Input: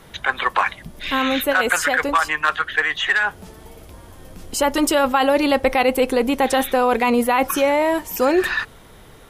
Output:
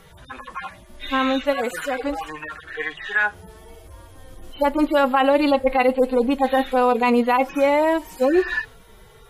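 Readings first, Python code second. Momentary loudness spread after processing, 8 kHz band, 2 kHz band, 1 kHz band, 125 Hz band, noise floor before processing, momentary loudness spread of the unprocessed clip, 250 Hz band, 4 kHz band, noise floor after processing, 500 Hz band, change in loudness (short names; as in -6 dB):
16 LU, under -10 dB, -5.5 dB, -2.0 dB, n/a, -45 dBFS, 6 LU, -0.5 dB, -7.0 dB, -48 dBFS, -0.5 dB, -1.5 dB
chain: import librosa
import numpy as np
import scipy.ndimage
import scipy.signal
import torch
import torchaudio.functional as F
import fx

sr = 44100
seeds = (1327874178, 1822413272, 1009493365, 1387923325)

y = fx.hpss_only(x, sr, part='harmonic')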